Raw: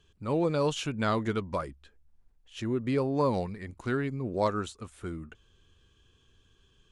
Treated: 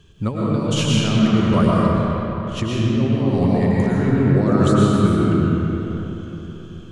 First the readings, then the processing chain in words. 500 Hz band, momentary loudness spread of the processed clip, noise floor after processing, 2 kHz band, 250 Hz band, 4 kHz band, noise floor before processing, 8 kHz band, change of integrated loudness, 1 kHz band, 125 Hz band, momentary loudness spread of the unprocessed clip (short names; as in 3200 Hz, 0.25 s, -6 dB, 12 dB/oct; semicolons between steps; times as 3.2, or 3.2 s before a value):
+9.0 dB, 12 LU, -36 dBFS, +9.0 dB, +16.0 dB, +14.0 dB, -66 dBFS, +13.5 dB, +12.5 dB, +9.0 dB, +17.5 dB, 13 LU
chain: bell 150 Hz +9 dB 2.1 oct; negative-ratio compressor -27 dBFS, ratio -0.5; digital reverb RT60 3.9 s, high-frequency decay 0.6×, pre-delay 75 ms, DRR -6 dB; gain +6 dB